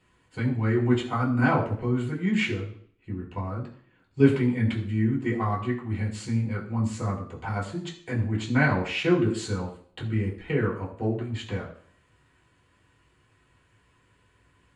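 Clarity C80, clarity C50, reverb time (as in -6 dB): 11.5 dB, 9.0 dB, 0.55 s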